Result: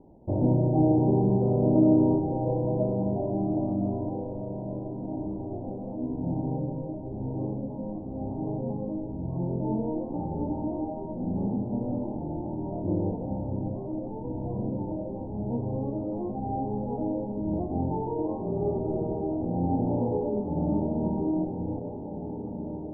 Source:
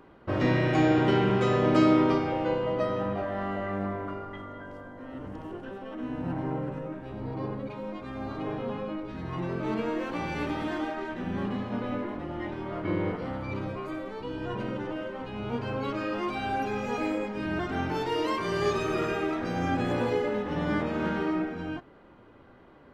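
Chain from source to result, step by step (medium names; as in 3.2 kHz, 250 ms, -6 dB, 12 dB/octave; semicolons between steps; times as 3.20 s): rippled Chebyshev low-pass 920 Hz, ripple 3 dB; bass shelf 190 Hz +7.5 dB; echo that smears into a reverb 1830 ms, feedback 44%, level -9 dB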